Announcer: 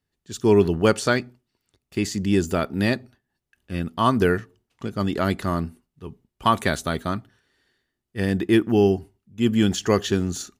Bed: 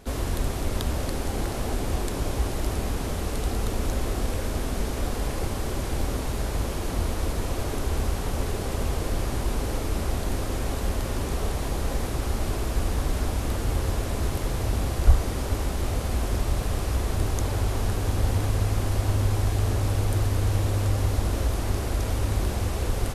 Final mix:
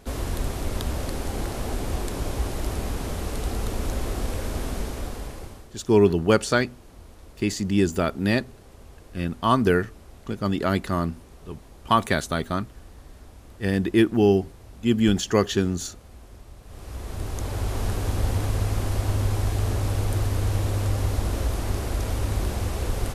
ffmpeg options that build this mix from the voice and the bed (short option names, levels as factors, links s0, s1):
-filter_complex "[0:a]adelay=5450,volume=0.944[s0];[1:a]volume=8.41,afade=t=out:st=4.69:d=1:silence=0.112202,afade=t=in:st=16.64:d=1.22:silence=0.105925[s1];[s0][s1]amix=inputs=2:normalize=0"